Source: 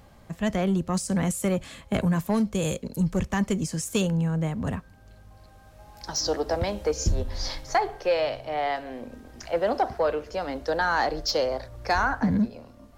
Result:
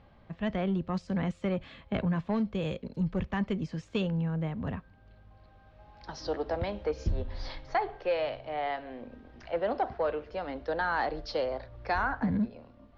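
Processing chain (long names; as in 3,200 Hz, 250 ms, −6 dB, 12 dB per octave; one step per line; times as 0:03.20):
low-pass filter 3,800 Hz 24 dB per octave
level −5.5 dB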